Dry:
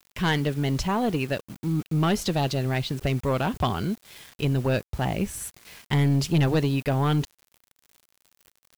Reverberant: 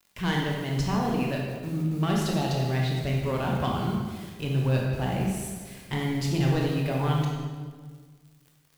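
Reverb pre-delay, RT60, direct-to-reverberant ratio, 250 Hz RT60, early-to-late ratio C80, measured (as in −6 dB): 19 ms, 1.6 s, −2.0 dB, 1.9 s, 3.0 dB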